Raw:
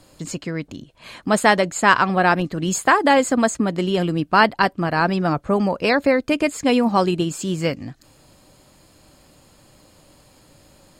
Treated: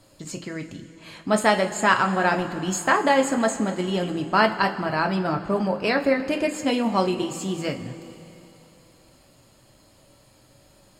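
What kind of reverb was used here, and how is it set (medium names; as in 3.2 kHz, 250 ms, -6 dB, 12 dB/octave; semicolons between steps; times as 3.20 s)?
two-slope reverb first 0.23 s, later 3.3 s, from -18 dB, DRR 3 dB; trim -5.5 dB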